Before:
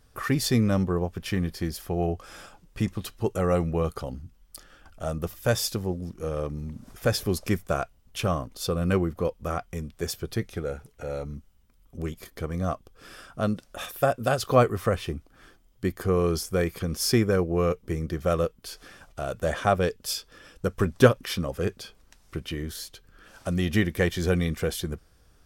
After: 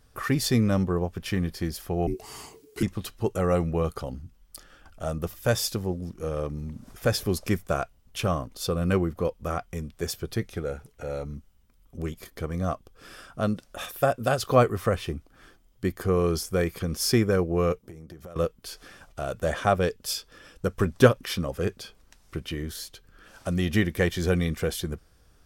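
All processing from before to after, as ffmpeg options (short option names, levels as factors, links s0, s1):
-filter_complex "[0:a]asettb=1/sr,asplit=3[s0][s1][s2];[s0]atrim=end=2.074[s3];[s1]atrim=start=2.07:end=2.83,asetpts=PTS-STARTPTS,afade=t=in:d=0.004:c=qsin,afade=t=out:st=0.756:d=0.004:c=qsin,afreqshift=-460,highshelf=f=5300:g=11.5[s4];[s2]atrim=start=2.826[s5];[s3][s4]acrossfade=d=0.004:c1=hsin:c2=qsin[s6];[s6][s5]acrossfade=d=0.004:c1=qsin:c2=hsin,asettb=1/sr,asplit=3[s7][s8][s9];[s7]atrim=end=17.784[s10];[s8]atrim=start=17.78:end=18.36,asetpts=PTS-STARTPTS,afade=t=in:d=0.004:c=qsin,afade=t=out:st=0.576:d=0.004:c=qsin,highpass=f=110:p=1,equalizer=f=2400:t=o:w=2.1:g=-4.5,acompressor=threshold=0.0112:ratio=12:attack=3.2:release=140:knee=1:detection=peak[s11];[s9]atrim=start=18.356[s12];[s10][s11]acrossfade=d=0.004:c1=hsin:c2=qsin[s13];[s13][s12]acrossfade=d=0.004:c1=qsin:c2=hsin"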